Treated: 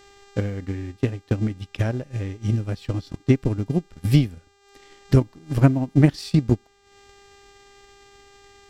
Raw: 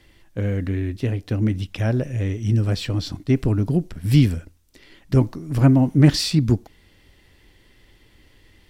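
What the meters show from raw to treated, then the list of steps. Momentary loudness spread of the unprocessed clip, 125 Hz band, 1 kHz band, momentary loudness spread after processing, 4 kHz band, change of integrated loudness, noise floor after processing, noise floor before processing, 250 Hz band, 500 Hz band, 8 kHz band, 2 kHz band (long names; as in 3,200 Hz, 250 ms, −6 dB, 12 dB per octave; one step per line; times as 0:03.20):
10 LU, −2.5 dB, −1.0 dB, 10 LU, −8.5 dB, −2.5 dB, −59 dBFS, −56 dBFS, −2.5 dB, −0.5 dB, can't be measured, −2.0 dB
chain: hum with harmonics 400 Hz, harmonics 20, −45 dBFS −4 dB per octave
transient designer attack +11 dB, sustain −9 dB
level −7 dB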